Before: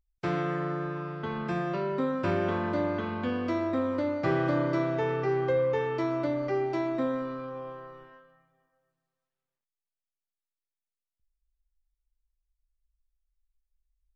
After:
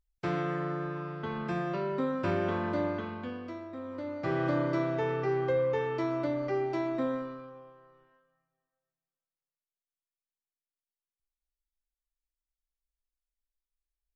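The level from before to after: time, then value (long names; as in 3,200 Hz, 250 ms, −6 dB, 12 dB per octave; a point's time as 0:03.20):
0:02.87 −2 dB
0:03.69 −14 dB
0:04.46 −2 dB
0:07.14 −2 dB
0:07.73 −14 dB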